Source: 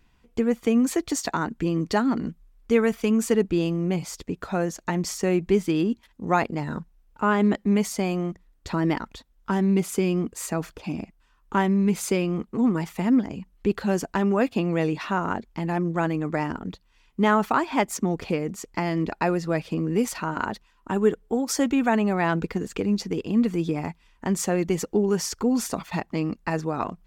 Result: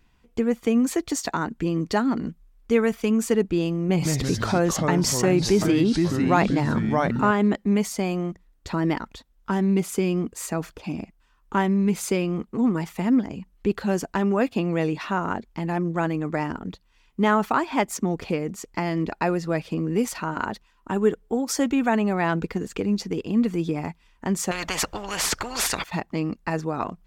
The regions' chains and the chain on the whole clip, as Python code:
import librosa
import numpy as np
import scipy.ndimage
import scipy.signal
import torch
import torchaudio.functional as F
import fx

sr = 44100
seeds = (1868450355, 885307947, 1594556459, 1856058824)

y = fx.chain(x, sr, fx.echo_pitch(ms=163, semitones=-3, count=3, db_per_echo=-6.0),
    fx.env_flatten(amount_pct=50), at=(3.89, 7.31))
y = fx.chain(y, sr, fx.lowpass(hz=2900.0, slope=6),
    fx.low_shelf(hz=390.0, db=5.5),
    fx.spectral_comp(ratio=10.0), at=(24.51, 25.84))